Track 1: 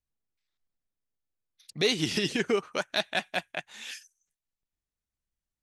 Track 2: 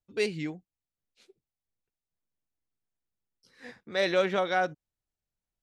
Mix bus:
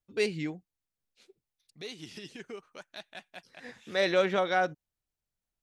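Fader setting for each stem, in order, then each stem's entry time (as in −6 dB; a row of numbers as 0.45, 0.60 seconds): −16.5, 0.0 decibels; 0.00, 0.00 seconds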